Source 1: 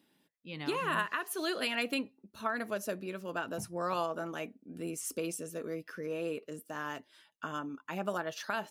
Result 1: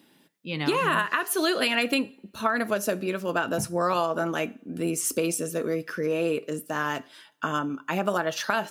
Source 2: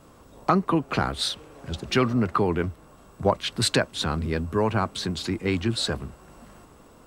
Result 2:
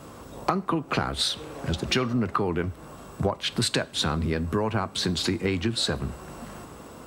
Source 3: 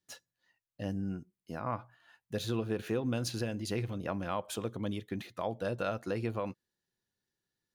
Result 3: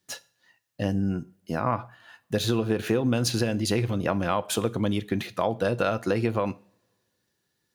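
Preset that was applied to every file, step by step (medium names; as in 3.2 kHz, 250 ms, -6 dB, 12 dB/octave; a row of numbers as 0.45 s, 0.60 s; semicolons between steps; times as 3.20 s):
high-pass 54 Hz; compression 6:1, threshold -31 dBFS; two-slope reverb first 0.43 s, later 1.9 s, from -26 dB, DRR 16 dB; normalise loudness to -27 LUFS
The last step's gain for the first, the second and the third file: +11.5 dB, +8.5 dB, +11.5 dB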